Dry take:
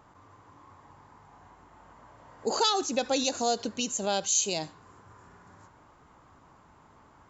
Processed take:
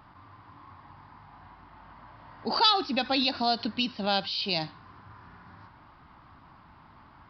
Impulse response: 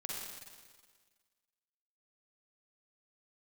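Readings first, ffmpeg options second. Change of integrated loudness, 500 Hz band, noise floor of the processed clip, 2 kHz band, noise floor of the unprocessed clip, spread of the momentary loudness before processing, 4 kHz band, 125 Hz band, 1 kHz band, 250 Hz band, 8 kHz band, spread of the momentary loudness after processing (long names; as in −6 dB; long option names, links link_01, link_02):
+1.0 dB, −3.5 dB, −55 dBFS, +4.5 dB, −58 dBFS, 8 LU, +4.5 dB, +4.5 dB, +3.0 dB, +3.0 dB, can't be measured, 9 LU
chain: -af "equalizer=frequency=470:width_type=o:width=0.72:gain=-12.5,aresample=11025,aresample=44100,volume=5dB"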